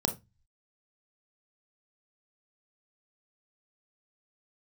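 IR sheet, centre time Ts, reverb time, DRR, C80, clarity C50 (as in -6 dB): 9 ms, 0.20 s, 6.0 dB, 22.0 dB, 13.5 dB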